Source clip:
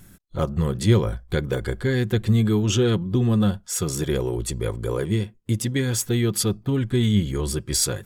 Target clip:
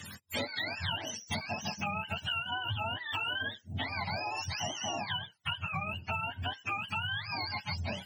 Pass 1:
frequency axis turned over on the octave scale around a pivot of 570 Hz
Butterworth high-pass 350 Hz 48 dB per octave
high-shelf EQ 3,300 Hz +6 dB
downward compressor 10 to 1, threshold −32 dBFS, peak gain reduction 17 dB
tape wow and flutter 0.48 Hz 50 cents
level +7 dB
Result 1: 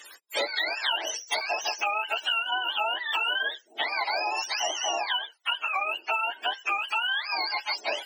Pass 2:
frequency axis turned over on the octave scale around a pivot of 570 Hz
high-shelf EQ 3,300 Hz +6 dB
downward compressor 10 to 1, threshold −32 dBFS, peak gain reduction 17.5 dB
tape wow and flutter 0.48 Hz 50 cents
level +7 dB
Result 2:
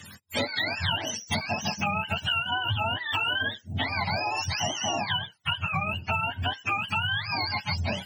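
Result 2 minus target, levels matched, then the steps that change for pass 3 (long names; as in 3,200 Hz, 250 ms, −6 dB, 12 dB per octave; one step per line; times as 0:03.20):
downward compressor: peak gain reduction −7 dB
change: downward compressor 10 to 1, threshold −40 dBFS, peak gain reduction 24.5 dB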